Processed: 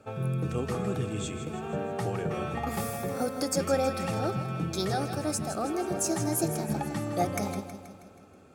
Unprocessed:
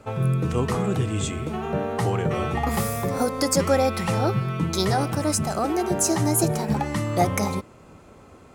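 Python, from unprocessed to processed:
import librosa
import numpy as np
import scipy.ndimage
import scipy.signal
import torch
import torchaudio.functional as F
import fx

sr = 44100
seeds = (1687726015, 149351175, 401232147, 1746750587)

y = fx.notch_comb(x, sr, f0_hz=1000.0)
y = fx.echo_feedback(y, sr, ms=160, feedback_pct=56, wet_db=-10.5)
y = F.gain(torch.from_numpy(y), -6.5).numpy()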